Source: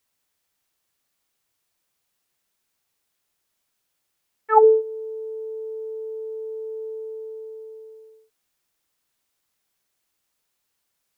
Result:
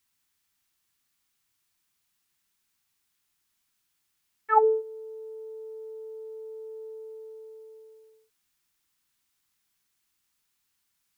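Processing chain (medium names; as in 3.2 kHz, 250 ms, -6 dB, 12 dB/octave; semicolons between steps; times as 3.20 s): peaking EQ 550 Hz -14 dB 0.83 oct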